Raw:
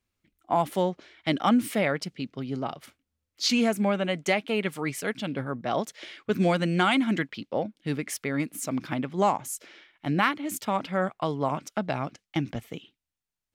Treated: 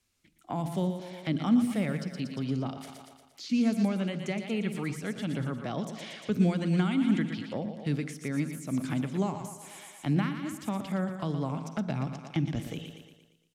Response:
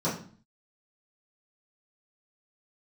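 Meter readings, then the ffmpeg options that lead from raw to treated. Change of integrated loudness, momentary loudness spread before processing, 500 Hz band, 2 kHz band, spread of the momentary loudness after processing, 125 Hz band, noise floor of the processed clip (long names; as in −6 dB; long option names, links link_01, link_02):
−3.0 dB, 11 LU, −8.0 dB, −9.5 dB, 12 LU, +2.0 dB, −64 dBFS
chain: -filter_complex "[0:a]lowpass=7700,aemphasis=mode=production:type=75fm,aecho=1:1:116|232|348|464|580|696:0.266|0.138|0.0719|0.0374|0.0195|0.0101,acrossover=split=270[link_01][link_02];[link_02]acompressor=threshold=-43dB:ratio=3[link_03];[link_01][link_03]amix=inputs=2:normalize=0,asplit=2[link_04][link_05];[1:a]atrim=start_sample=2205,adelay=45[link_06];[link_05][link_06]afir=irnorm=-1:irlink=0,volume=-27dB[link_07];[link_04][link_07]amix=inputs=2:normalize=0,acrossover=split=3000[link_08][link_09];[link_09]acompressor=threshold=-48dB:ratio=4:attack=1:release=60[link_10];[link_08][link_10]amix=inputs=2:normalize=0,volume=3dB"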